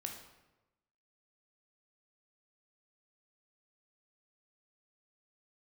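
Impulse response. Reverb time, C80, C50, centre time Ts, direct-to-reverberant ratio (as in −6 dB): 1.0 s, 8.5 dB, 5.5 dB, 30 ms, 2.0 dB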